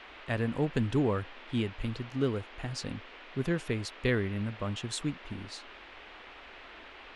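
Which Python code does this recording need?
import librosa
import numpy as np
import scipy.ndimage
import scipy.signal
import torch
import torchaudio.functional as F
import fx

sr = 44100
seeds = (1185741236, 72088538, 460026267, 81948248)

y = fx.noise_reduce(x, sr, print_start_s=5.77, print_end_s=6.27, reduce_db=27.0)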